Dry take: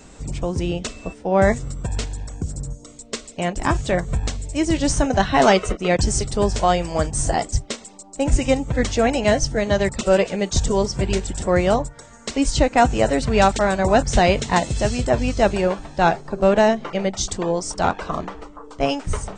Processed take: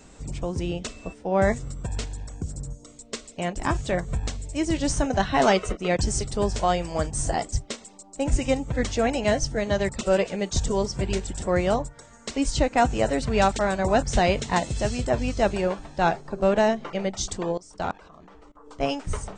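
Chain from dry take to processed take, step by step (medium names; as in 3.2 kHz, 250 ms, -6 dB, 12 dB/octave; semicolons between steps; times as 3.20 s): 17.52–18.67 s: level held to a coarse grid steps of 22 dB; trim -5 dB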